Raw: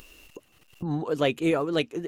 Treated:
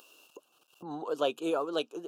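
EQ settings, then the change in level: high-pass 380 Hz 12 dB/octave; Butterworth band-stop 2 kHz, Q 1.6; peaking EQ 1.1 kHz +3.5 dB 2.2 oct; -5.0 dB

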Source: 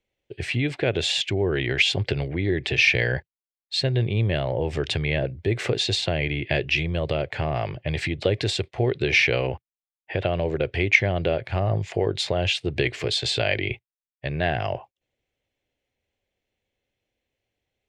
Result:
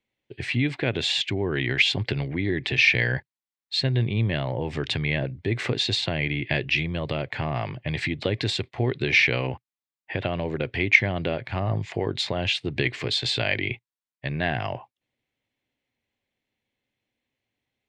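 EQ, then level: graphic EQ 125/250/1000/2000/4000/8000 Hz +8/+12/+10/+8/+8/+4 dB; -10.5 dB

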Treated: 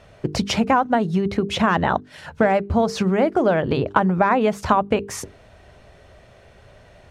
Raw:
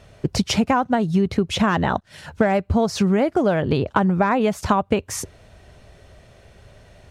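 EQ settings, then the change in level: bass shelf 330 Hz -5.5 dB; treble shelf 3.5 kHz -8.5 dB; hum notches 50/100/150/200/250/300/350/400/450 Hz; +3.5 dB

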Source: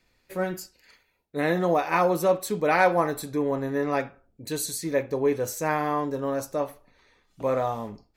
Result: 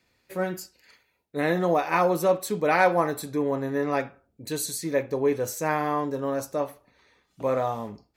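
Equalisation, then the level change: high-pass 62 Hz; 0.0 dB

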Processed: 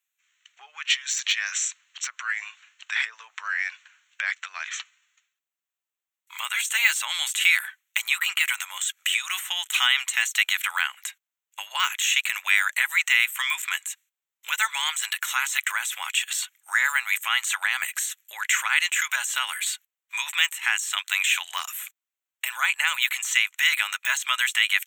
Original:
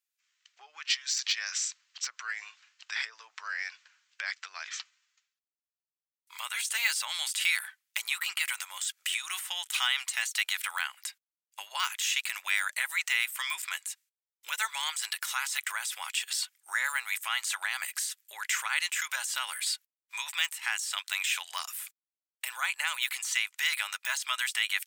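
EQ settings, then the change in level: boxcar filter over 9 samples; tilt EQ +5 dB/octave; +6.0 dB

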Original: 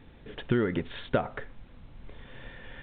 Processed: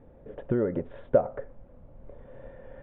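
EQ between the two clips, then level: low-pass 1 kHz 12 dB/octave; peaking EQ 560 Hz +13 dB 0.48 oct; -2.0 dB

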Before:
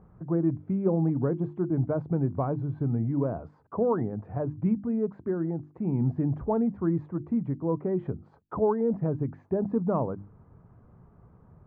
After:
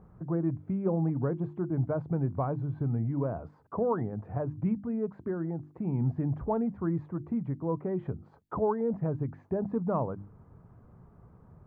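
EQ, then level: dynamic bell 300 Hz, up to -5 dB, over -35 dBFS, Q 0.77; 0.0 dB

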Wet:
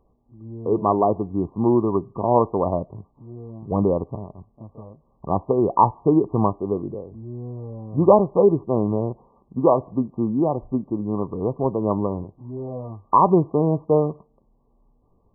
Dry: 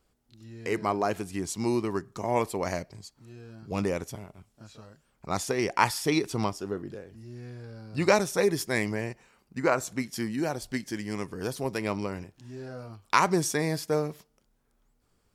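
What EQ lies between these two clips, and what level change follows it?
brick-wall FIR low-pass 1.2 kHz; +9.0 dB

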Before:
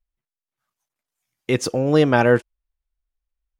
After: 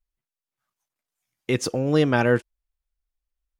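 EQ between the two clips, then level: dynamic bell 720 Hz, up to -4 dB, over -25 dBFS, Q 0.85; -2.0 dB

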